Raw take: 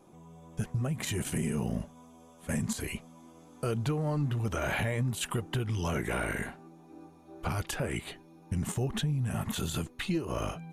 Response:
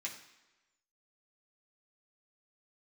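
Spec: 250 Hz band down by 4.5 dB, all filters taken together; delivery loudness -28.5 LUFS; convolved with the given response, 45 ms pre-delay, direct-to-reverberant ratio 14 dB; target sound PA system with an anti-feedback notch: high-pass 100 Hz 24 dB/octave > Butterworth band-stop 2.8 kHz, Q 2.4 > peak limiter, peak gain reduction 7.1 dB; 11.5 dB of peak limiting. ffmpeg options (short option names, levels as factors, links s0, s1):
-filter_complex "[0:a]equalizer=f=250:t=o:g=-7,alimiter=level_in=2.99:limit=0.0631:level=0:latency=1,volume=0.335,asplit=2[s0][s1];[1:a]atrim=start_sample=2205,adelay=45[s2];[s1][s2]afir=irnorm=-1:irlink=0,volume=0.2[s3];[s0][s3]amix=inputs=2:normalize=0,highpass=f=100:w=0.5412,highpass=f=100:w=1.3066,asuperstop=centerf=2800:order=8:qfactor=2.4,volume=7.94,alimiter=limit=0.112:level=0:latency=1"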